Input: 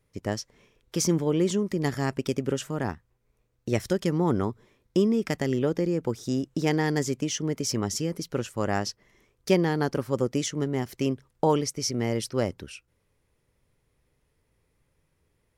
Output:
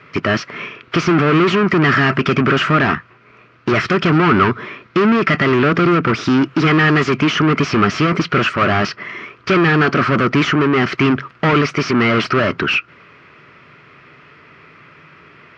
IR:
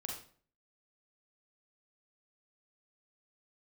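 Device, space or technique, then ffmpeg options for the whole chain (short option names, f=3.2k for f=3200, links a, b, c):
overdrive pedal into a guitar cabinet: -filter_complex "[0:a]asplit=2[a][b];[b]highpass=f=720:p=1,volume=40dB,asoftclip=type=tanh:threshold=-7.5dB[c];[a][c]amix=inputs=2:normalize=0,lowpass=f=2.8k:p=1,volume=-6dB,highpass=100,equalizer=f=150:t=q:w=4:g=5,equalizer=f=510:t=q:w=4:g=-10,equalizer=f=840:t=q:w=4:g=-10,equalizer=f=1.3k:t=q:w=4:g=9,equalizer=f=2.5k:t=q:w=4:g=4,equalizer=f=3.7k:t=q:w=4:g=-7,lowpass=f=4.1k:w=0.5412,lowpass=f=4.1k:w=1.3066,volume=2.5dB"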